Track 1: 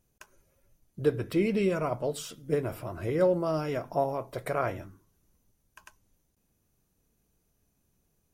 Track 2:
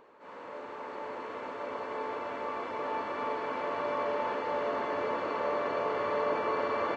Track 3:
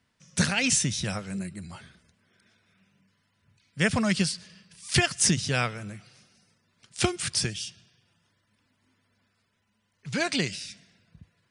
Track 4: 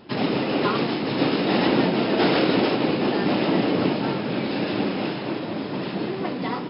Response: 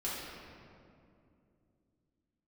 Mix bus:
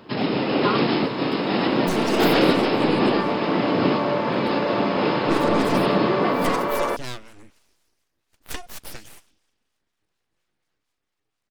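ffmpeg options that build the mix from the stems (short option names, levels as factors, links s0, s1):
-filter_complex "[0:a]tiltshelf=f=780:g=-4.5,volume=0.141,asplit=2[s0][s1];[1:a]volume=1.33,asplit=2[s2][s3];[s3]volume=0.631[s4];[2:a]acrossover=split=720[s5][s6];[s5]aeval=exprs='val(0)*(1-0.5/2+0.5/2*cos(2*PI*4.2*n/s))':c=same[s7];[s6]aeval=exprs='val(0)*(1-0.5/2-0.5/2*cos(2*PI*4.2*n/s))':c=same[s8];[s7][s8]amix=inputs=2:normalize=0,aeval=exprs='abs(val(0))':c=same,adelay=1500,volume=0.708[s9];[3:a]dynaudnorm=f=320:g=5:m=2.37,volume=1[s10];[s1]apad=whole_len=295236[s11];[s10][s11]sidechaincompress=threshold=0.00398:ratio=8:attack=41:release=1360[s12];[4:a]atrim=start_sample=2205[s13];[s4][s13]afir=irnorm=-1:irlink=0[s14];[s0][s2][s9][s12][s14]amix=inputs=5:normalize=0"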